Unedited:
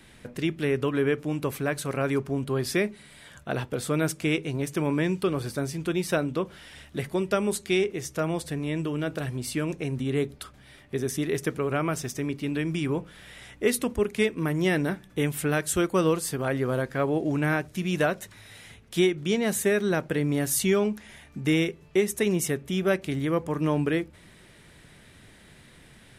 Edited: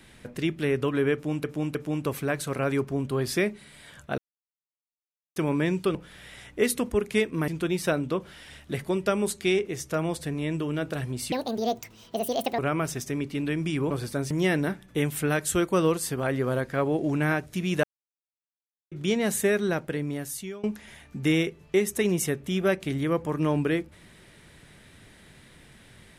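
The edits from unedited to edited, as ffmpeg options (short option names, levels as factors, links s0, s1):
-filter_complex "[0:a]asplit=14[s0][s1][s2][s3][s4][s5][s6][s7][s8][s9][s10][s11][s12][s13];[s0]atrim=end=1.442[s14];[s1]atrim=start=1.128:end=1.442[s15];[s2]atrim=start=1.128:end=3.56,asetpts=PTS-STARTPTS,afade=t=out:st=2.428:d=0.004:c=hsin[s16];[s3]atrim=start=3.56:end=4.74,asetpts=PTS-STARTPTS,volume=0[s17];[s4]atrim=start=4.74:end=5.332,asetpts=PTS-STARTPTS,afade=t=in:d=0.004:c=hsin[s18];[s5]atrim=start=12.988:end=14.522[s19];[s6]atrim=start=5.728:end=9.574[s20];[s7]atrim=start=9.57:end=11.67,asetpts=PTS-STARTPTS,asetrate=73206,aresample=44100,atrim=end_sample=55789,asetpts=PTS-STARTPTS[s21];[s8]atrim=start=11.666:end=12.992[s22];[s9]atrim=start=5.328:end=5.732[s23];[s10]atrim=start=14.518:end=18.05,asetpts=PTS-STARTPTS,afade=t=out:st=3.528:d=0.004:c=hsin[s24];[s11]atrim=start=18.05:end=19.13,asetpts=PTS-STARTPTS,volume=0[s25];[s12]atrim=start=19.13:end=20.85,asetpts=PTS-STARTPTS,afade=t=in:d=0.004:c=hsin,afade=t=out:st=0.61:d=1.11:silence=0.0794328[s26];[s13]atrim=start=20.85,asetpts=PTS-STARTPTS,afade=t=in:d=0.004:c=hsin:silence=0.0794328[s27];[s14][s15]acrossfade=d=0.004:c1=hsin:c2=hsin[s28];[s16][s17][s18]concat=n=3:v=0:a=1[s29];[s28][s29]acrossfade=d=0.004:c1=hsin:c2=hsin[s30];[s30][s19]acrossfade=d=0.004:c1=hsin:c2=hsin[s31];[s31][s20]acrossfade=d=0.004:c1=hsin:c2=hsin[s32];[s32][s21]acrossfade=d=0.004:c1=hsin:c2=hsin[s33];[s33][s22]acrossfade=d=0.004:c1=hsin:c2=hsin[s34];[s34][s23]acrossfade=d=0.004:c1=hsin:c2=hsin[s35];[s24][s25][s26][s27]concat=n=4:v=0:a=1[s36];[s35][s36]acrossfade=d=0.004:c1=hsin:c2=hsin"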